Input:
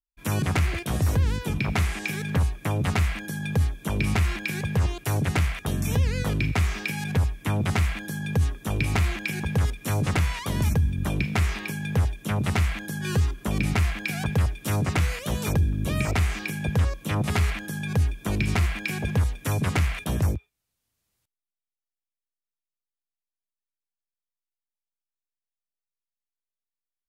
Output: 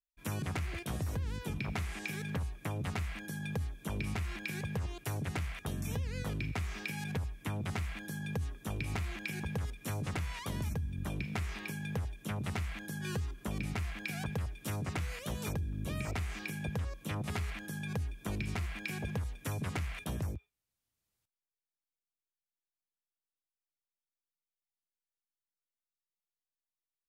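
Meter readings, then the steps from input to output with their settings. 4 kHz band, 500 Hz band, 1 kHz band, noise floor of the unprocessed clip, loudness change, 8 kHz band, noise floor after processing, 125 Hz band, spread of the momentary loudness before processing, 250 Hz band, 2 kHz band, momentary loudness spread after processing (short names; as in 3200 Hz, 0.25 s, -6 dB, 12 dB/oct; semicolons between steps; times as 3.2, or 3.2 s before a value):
-11.0 dB, -11.0 dB, -11.5 dB, under -85 dBFS, -12.0 dB, -11.0 dB, under -85 dBFS, -13.0 dB, 4 LU, -11.0 dB, -11.0 dB, 2 LU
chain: compressor, threshold -24 dBFS, peak gain reduction 7 dB; gain -8.5 dB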